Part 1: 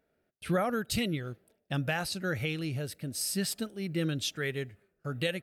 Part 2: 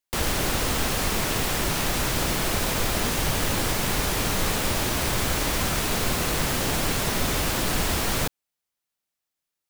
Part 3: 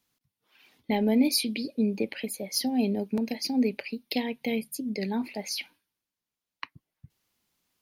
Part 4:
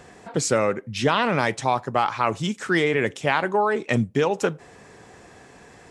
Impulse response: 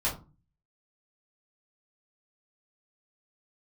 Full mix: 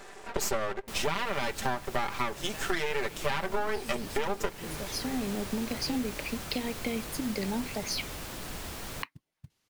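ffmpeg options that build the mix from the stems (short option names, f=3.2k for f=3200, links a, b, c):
-filter_complex "[0:a]adelay=650,volume=-13.5dB[a];[1:a]adelay=750,volume=-15dB[b];[2:a]lowpass=10k,acompressor=threshold=-29dB:ratio=6,acrusher=bits=5:mode=log:mix=0:aa=0.000001,adelay=2400,volume=1dB[c];[3:a]highpass=f=320:w=0.5412,highpass=f=320:w=1.3066,aecho=1:1:5.1:0.87,aeval=exprs='max(val(0),0)':c=same,volume=2.5dB,asplit=2[d][e];[e]apad=whole_len=450480[f];[c][f]sidechaincompress=threshold=-22dB:ratio=8:attack=16:release=1140[g];[a][b][g][d]amix=inputs=4:normalize=0,acompressor=threshold=-26dB:ratio=5"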